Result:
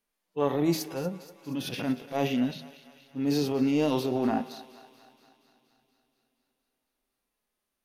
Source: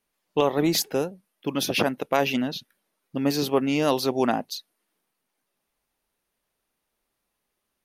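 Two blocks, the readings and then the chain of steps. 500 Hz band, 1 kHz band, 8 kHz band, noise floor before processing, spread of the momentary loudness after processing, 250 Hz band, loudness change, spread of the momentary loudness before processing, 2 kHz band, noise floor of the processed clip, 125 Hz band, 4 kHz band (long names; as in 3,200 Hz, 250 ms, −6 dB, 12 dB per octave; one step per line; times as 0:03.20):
−5.5 dB, −7.0 dB, −10.0 dB, −80 dBFS, 15 LU, −1.5 dB, −4.0 dB, 12 LU, −9.0 dB, −84 dBFS, −1.0 dB, −9.0 dB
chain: transient designer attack −8 dB, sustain +7 dB
harmonic and percussive parts rebalanced percussive −18 dB
hum removal 78.62 Hz, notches 37
on a send: feedback echo with a high-pass in the loop 237 ms, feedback 67%, high-pass 570 Hz, level −15.5 dB
on the sum: coupled-rooms reverb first 0.29 s, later 4.1 s, from −18 dB, DRR 19 dB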